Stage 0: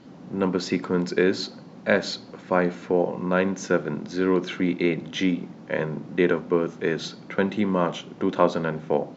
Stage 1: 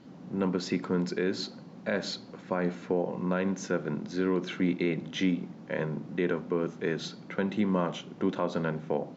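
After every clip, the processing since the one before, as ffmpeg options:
-af "alimiter=limit=-13dB:level=0:latency=1:release=106,equalizer=f=180:w=1.5:g=3,volume=-5dB"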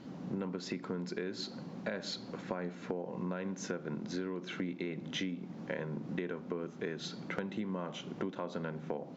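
-af "acompressor=threshold=-37dB:ratio=10,aeval=exprs='0.0668*(cos(1*acos(clip(val(0)/0.0668,-1,1)))-cos(1*PI/2))+0.000531*(cos(7*acos(clip(val(0)/0.0668,-1,1)))-cos(7*PI/2))':c=same,volume=3dB"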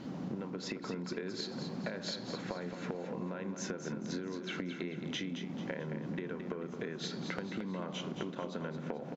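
-af "acompressor=threshold=-41dB:ratio=6,aecho=1:1:220|440|660|880|1100:0.398|0.163|0.0669|0.0274|0.0112,volume=5dB"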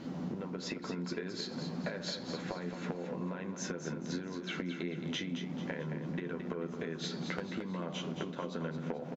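-filter_complex "[0:a]asplit=2[a][b];[b]adelay=12,volume=-6.5dB[c];[a][c]amix=inputs=2:normalize=0"

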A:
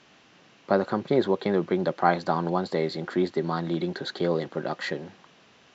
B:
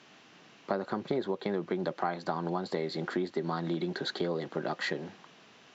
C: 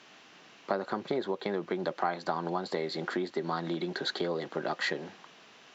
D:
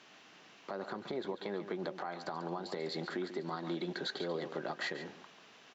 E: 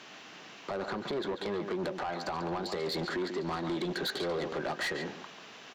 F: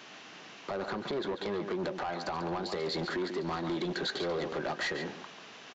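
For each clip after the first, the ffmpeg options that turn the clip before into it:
-af "highpass=120,bandreject=f=540:w=17,acompressor=threshold=-28dB:ratio=6"
-af "lowshelf=f=260:g=-8.5,volume=2.5dB"
-af "alimiter=limit=-23.5dB:level=0:latency=1:release=129,aecho=1:1:141:0.282,volume=-3.5dB"
-af "asoftclip=type=tanh:threshold=-37.5dB,volume=9dB"
-af "aresample=16000,aresample=44100"

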